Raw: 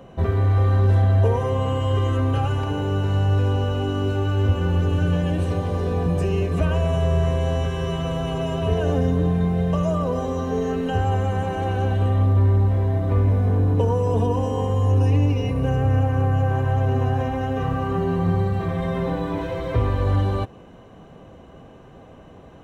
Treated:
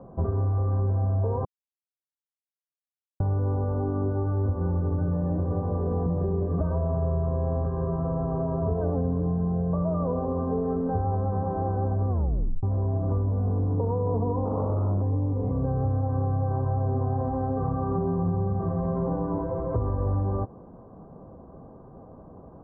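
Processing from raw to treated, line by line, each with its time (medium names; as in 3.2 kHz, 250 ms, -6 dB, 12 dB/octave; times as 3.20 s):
1.45–3.20 s: mute
12.09 s: tape stop 0.54 s
14.45–15.02 s: loudspeaker Doppler distortion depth 0.82 ms
whole clip: steep low-pass 1.2 kHz 36 dB/octave; peaking EQ 200 Hz +2 dB; compression, threshold -20 dBFS; trim -2 dB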